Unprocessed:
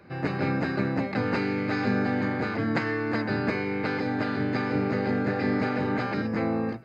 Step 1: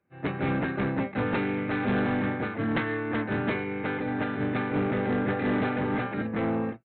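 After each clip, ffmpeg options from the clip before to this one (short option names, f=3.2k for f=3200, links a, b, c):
-af "agate=range=-33dB:threshold=-20dB:ratio=3:detection=peak,aresample=8000,asoftclip=type=tanh:threshold=-30.5dB,aresample=44100,volume=8.5dB"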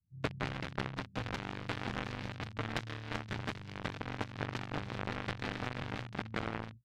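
-filter_complex "[0:a]acrossover=split=380|1400[a][b][c];[a]acompressor=threshold=-41dB:ratio=4[d];[b]acompressor=threshold=-44dB:ratio=4[e];[c]acompressor=threshold=-49dB:ratio=4[f];[d][e][f]amix=inputs=3:normalize=0,acrossover=split=130[g][h];[h]acrusher=bits=4:mix=0:aa=0.5[i];[g][i]amix=inputs=2:normalize=0,volume=6.5dB"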